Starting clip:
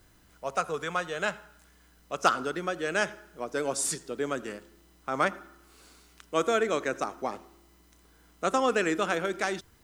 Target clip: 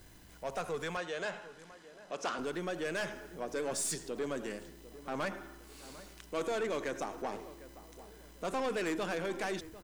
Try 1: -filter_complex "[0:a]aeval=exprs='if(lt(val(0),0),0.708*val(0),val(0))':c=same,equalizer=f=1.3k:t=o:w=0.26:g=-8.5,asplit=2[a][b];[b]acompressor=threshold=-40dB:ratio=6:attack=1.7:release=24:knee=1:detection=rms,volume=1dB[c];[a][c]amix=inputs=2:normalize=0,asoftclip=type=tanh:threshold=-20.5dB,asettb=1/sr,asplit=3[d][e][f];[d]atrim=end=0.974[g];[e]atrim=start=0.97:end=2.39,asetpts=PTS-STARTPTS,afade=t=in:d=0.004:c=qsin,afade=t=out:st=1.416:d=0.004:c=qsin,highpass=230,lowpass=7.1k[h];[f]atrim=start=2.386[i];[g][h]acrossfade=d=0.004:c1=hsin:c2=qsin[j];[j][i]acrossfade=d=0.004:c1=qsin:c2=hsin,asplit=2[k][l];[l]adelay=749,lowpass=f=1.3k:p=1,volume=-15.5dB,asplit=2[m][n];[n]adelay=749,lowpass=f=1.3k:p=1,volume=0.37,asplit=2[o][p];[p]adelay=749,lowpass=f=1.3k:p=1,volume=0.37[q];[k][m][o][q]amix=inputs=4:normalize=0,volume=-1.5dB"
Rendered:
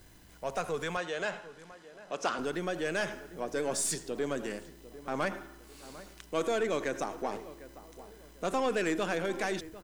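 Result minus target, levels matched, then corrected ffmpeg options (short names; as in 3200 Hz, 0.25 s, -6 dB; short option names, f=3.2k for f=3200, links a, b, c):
compressor: peak gain reduction -8 dB; soft clip: distortion -7 dB
-filter_complex "[0:a]aeval=exprs='if(lt(val(0),0),0.708*val(0),val(0))':c=same,equalizer=f=1.3k:t=o:w=0.26:g=-8.5,asplit=2[a][b];[b]acompressor=threshold=-49.5dB:ratio=6:attack=1.7:release=24:knee=1:detection=rms,volume=1dB[c];[a][c]amix=inputs=2:normalize=0,asoftclip=type=tanh:threshold=-28dB,asettb=1/sr,asplit=3[d][e][f];[d]atrim=end=0.974[g];[e]atrim=start=0.97:end=2.39,asetpts=PTS-STARTPTS,afade=t=in:d=0.004:c=qsin,afade=t=out:st=1.416:d=0.004:c=qsin,highpass=230,lowpass=7.1k[h];[f]atrim=start=2.386[i];[g][h]acrossfade=d=0.004:c1=hsin:c2=qsin[j];[j][i]acrossfade=d=0.004:c1=qsin:c2=hsin,asplit=2[k][l];[l]adelay=749,lowpass=f=1.3k:p=1,volume=-15.5dB,asplit=2[m][n];[n]adelay=749,lowpass=f=1.3k:p=1,volume=0.37,asplit=2[o][p];[p]adelay=749,lowpass=f=1.3k:p=1,volume=0.37[q];[k][m][o][q]amix=inputs=4:normalize=0,volume=-1.5dB"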